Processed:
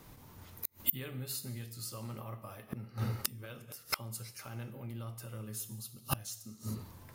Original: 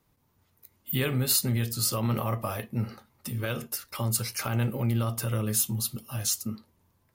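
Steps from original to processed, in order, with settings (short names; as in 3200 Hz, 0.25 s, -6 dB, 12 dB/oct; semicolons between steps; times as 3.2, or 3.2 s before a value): non-linear reverb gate 0.34 s falling, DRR 9.5 dB; flipped gate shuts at -28 dBFS, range -31 dB; gain +15 dB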